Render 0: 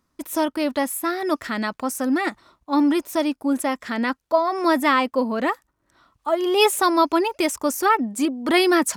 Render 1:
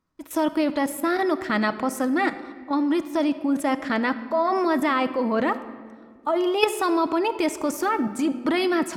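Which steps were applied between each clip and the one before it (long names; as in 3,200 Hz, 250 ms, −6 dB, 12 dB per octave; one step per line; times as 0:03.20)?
high-shelf EQ 5,900 Hz −11 dB
output level in coarse steps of 14 dB
rectangular room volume 2,400 cubic metres, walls mixed, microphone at 0.6 metres
level +6 dB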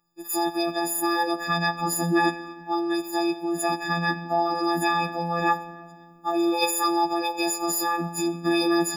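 every partial snapped to a pitch grid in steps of 6 semitones
phase shifter 0.46 Hz, delay 2.5 ms, feedback 32%
phases set to zero 170 Hz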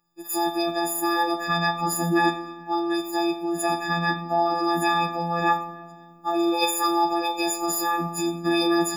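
four-comb reverb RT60 0.49 s, combs from 28 ms, DRR 10 dB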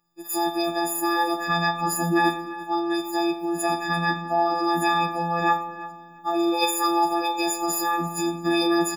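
repeating echo 343 ms, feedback 22%, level −17.5 dB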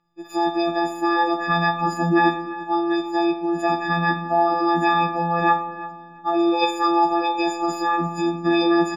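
high-frequency loss of the air 180 metres
level +4 dB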